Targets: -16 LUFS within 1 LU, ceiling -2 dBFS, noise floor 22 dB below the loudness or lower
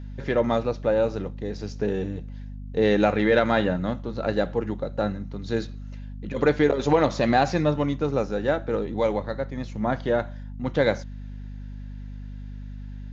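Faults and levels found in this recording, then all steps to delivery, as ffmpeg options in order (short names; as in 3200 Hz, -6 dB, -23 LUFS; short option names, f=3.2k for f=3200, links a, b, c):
hum 50 Hz; harmonics up to 250 Hz; hum level -34 dBFS; loudness -25.0 LUFS; peak -7.5 dBFS; loudness target -16.0 LUFS
-> -af "bandreject=f=50:t=h:w=6,bandreject=f=100:t=h:w=6,bandreject=f=150:t=h:w=6,bandreject=f=200:t=h:w=6,bandreject=f=250:t=h:w=6"
-af "volume=9dB,alimiter=limit=-2dB:level=0:latency=1"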